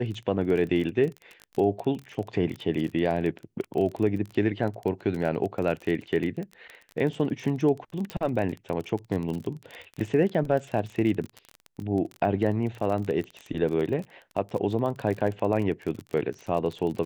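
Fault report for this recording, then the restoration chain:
surface crackle 30 per second −31 dBFS
0:08.10: click −19 dBFS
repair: click removal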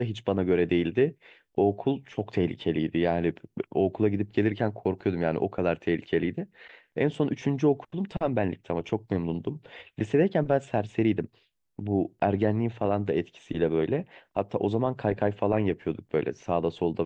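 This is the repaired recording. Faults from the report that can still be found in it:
0:08.10: click

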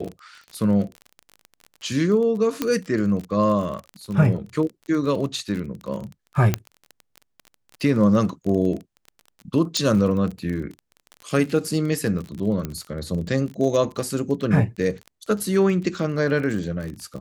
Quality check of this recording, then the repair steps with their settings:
surface crackle 31 per second −29 dBFS
0:02.62: click −8 dBFS
0:06.54: click −6 dBFS
0:09.77: click −9 dBFS
0:12.65: click −14 dBFS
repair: click removal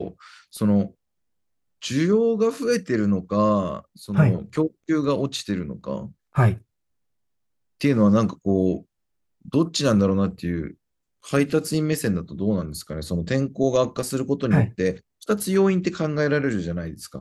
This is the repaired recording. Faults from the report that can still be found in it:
0:02.62: click
0:09.77: click

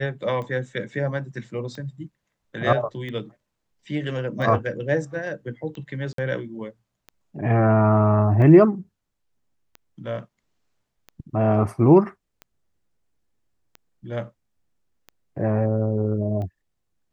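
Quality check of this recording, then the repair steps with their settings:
scratch tick 45 rpm −24 dBFS
0:06.13–0:06.18: drop-out 53 ms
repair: click removal
repair the gap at 0:06.13, 53 ms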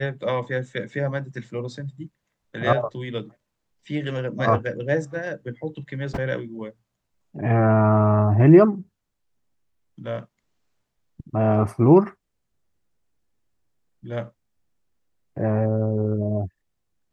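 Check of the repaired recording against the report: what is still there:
none of them is left

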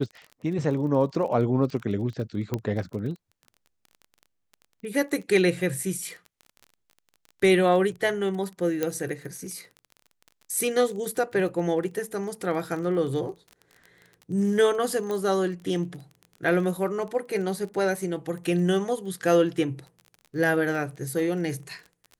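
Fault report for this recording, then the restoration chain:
surface crackle 24 per second −35 dBFS
0:02.54: click −14 dBFS
0:08.83: click −12 dBFS
0:15.11: click −19 dBFS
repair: click removal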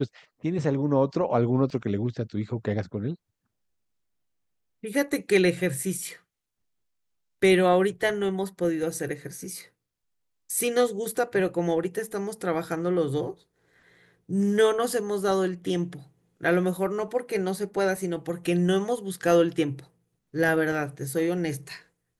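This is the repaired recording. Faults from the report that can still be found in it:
0:08.83: click

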